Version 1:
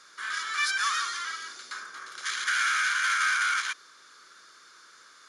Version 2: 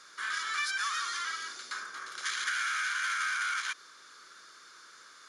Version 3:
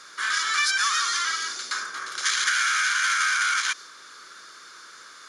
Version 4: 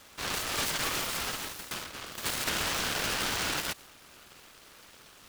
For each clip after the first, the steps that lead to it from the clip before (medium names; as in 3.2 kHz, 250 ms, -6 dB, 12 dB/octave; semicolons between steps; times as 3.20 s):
compression 4:1, threshold -30 dBFS, peak gain reduction 7 dB
dynamic bell 6.1 kHz, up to +5 dB, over -49 dBFS, Q 0.89; trim +8 dB
delay time shaken by noise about 1.4 kHz, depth 0.17 ms; trim -8 dB